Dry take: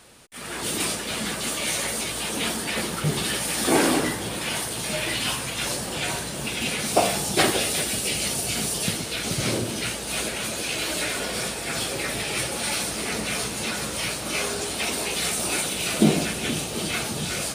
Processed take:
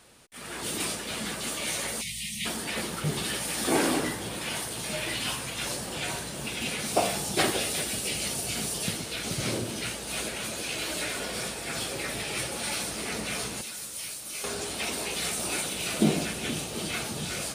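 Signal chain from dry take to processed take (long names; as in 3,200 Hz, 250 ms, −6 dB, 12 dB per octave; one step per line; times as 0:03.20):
0:02.02–0:02.46: gain on a spectral selection 220–1,800 Hz −30 dB
0:13.61–0:14.44: first-order pre-emphasis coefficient 0.8
level −5 dB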